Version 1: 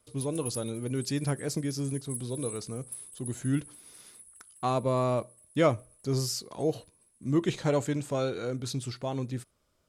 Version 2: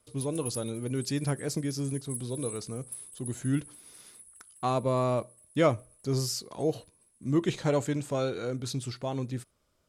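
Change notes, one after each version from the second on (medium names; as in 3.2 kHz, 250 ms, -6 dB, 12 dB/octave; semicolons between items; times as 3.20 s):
no change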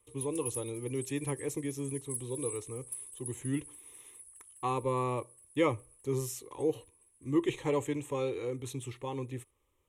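speech: add static phaser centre 980 Hz, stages 8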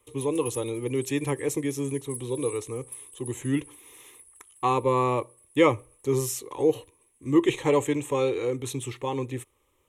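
speech +9.0 dB; master: add bass shelf 140 Hz -6.5 dB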